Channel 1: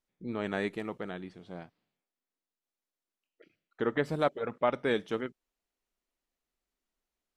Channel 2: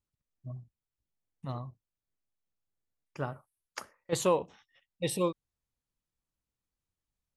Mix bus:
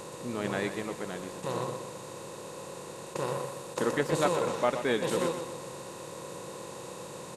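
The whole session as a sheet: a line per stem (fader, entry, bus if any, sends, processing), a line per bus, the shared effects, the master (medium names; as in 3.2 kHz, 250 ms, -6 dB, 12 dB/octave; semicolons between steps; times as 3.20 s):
0.0 dB, 0.00 s, no send, echo send -10.5 dB, treble shelf 6.3 kHz +10 dB
-8.0 dB, 0.00 s, no send, echo send -7 dB, spectral levelling over time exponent 0.2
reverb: none
echo: feedback delay 123 ms, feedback 42%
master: none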